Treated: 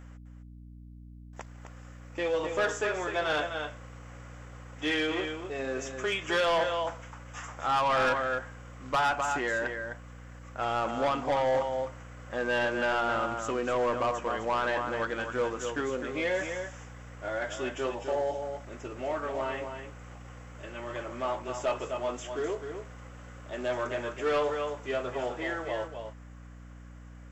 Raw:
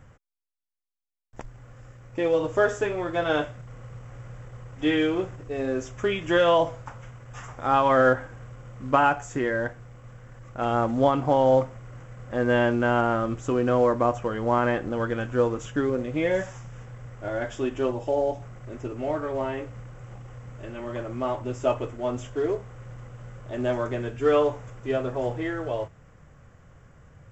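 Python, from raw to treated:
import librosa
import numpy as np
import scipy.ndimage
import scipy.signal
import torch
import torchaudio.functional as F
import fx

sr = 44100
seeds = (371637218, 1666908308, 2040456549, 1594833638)

p1 = fx.highpass(x, sr, hz=1000.0, slope=6)
p2 = p1 + fx.echo_single(p1, sr, ms=256, db=-8.0, dry=0)
p3 = fx.add_hum(p2, sr, base_hz=60, snr_db=18)
p4 = 10.0 ** (-24.0 / 20.0) * np.tanh(p3 / 10.0 ** (-24.0 / 20.0))
y = F.gain(torch.from_numpy(p4), 2.5).numpy()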